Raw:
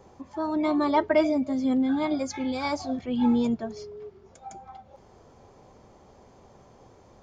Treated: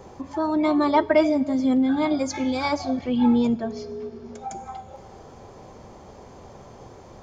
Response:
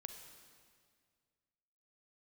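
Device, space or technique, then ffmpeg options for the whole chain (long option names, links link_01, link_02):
compressed reverb return: -filter_complex "[0:a]bandreject=frequency=279.5:width_type=h:width=4,bandreject=frequency=559:width_type=h:width=4,bandreject=frequency=838.5:width_type=h:width=4,bandreject=frequency=1118:width_type=h:width=4,bandreject=frequency=1397.5:width_type=h:width=4,bandreject=frequency=1677:width_type=h:width=4,bandreject=frequency=1956.5:width_type=h:width=4,bandreject=frequency=2236:width_type=h:width=4,bandreject=frequency=2515.5:width_type=h:width=4,bandreject=frequency=2795:width_type=h:width=4,bandreject=frequency=3074.5:width_type=h:width=4,bandreject=frequency=3354:width_type=h:width=4,bandreject=frequency=3633.5:width_type=h:width=4,bandreject=frequency=3913:width_type=h:width=4,bandreject=frequency=4192.5:width_type=h:width=4,bandreject=frequency=4472:width_type=h:width=4,bandreject=frequency=4751.5:width_type=h:width=4,bandreject=frequency=5031:width_type=h:width=4,bandreject=frequency=5310.5:width_type=h:width=4,bandreject=frequency=5590:width_type=h:width=4,bandreject=frequency=5869.5:width_type=h:width=4,bandreject=frequency=6149:width_type=h:width=4,bandreject=frequency=6428.5:width_type=h:width=4,bandreject=frequency=6708:width_type=h:width=4,bandreject=frequency=6987.5:width_type=h:width=4,bandreject=frequency=7267:width_type=h:width=4,bandreject=frequency=7546.5:width_type=h:width=4,bandreject=frequency=7826:width_type=h:width=4,bandreject=frequency=8105.5:width_type=h:width=4,bandreject=frequency=8385:width_type=h:width=4,bandreject=frequency=8664.5:width_type=h:width=4,asettb=1/sr,asplit=3[link_01][link_02][link_03];[link_01]atrim=end=2.694[link_04];[link_02]atrim=start=2.69:end=4.48,asetpts=PTS-STARTPTS,afade=type=in:duration=0.004:curve=qsin,afade=type=out:start_time=1.786:duration=0.004:curve=qsin,lowpass=6200[link_05];[link_03]atrim=start=4.476[link_06];[link_04][link_05]acrossfade=duration=0.004:curve1=hsin:curve2=qsin[link_07];[link_07][link_06]acrossfade=duration=0.004:curve1=qsin:curve2=hsin,asplit=2[link_08][link_09];[1:a]atrim=start_sample=2205[link_10];[link_09][link_10]afir=irnorm=-1:irlink=0,acompressor=threshold=-43dB:ratio=10,volume=6dB[link_11];[link_08][link_11]amix=inputs=2:normalize=0,volume=2.5dB"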